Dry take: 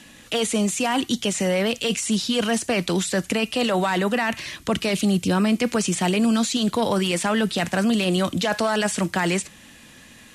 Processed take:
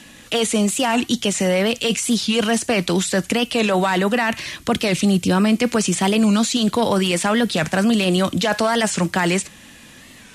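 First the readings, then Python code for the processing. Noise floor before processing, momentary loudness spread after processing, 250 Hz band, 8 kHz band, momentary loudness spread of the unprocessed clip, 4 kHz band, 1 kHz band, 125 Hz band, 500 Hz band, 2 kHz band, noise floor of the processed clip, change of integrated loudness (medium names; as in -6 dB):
-48 dBFS, 4 LU, +3.5 dB, +3.5 dB, 4 LU, +3.5 dB, +3.5 dB, +3.5 dB, +3.5 dB, +3.5 dB, -44 dBFS, +3.5 dB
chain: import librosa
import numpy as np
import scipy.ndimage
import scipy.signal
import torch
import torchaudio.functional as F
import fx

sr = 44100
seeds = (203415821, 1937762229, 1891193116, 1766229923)

y = fx.record_warp(x, sr, rpm=45.0, depth_cents=160.0)
y = y * 10.0 ** (3.5 / 20.0)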